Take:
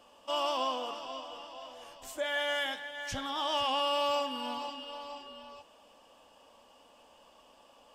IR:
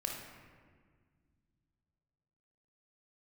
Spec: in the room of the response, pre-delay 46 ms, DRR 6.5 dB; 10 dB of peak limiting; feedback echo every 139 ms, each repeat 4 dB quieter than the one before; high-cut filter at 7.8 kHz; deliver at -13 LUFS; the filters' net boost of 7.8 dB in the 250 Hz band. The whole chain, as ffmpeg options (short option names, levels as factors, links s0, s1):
-filter_complex "[0:a]lowpass=7800,equalizer=f=250:t=o:g=8.5,alimiter=level_in=1.88:limit=0.0631:level=0:latency=1,volume=0.531,aecho=1:1:139|278|417|556|695|834|973|1112|1251:0.631|0.398|0.25|0.158|0.0994|0.0626|0.0394|0.0249|0.0157,asplit=2[s0][s1];[1:a]atrim=start_sample=2205,adelay=46[s2];[s1][s2]afir=irnorm=-1:irlink=0,volume=0.398[s3];[s0][s3]amix=inputs=2:normalize=0,volume=14.1"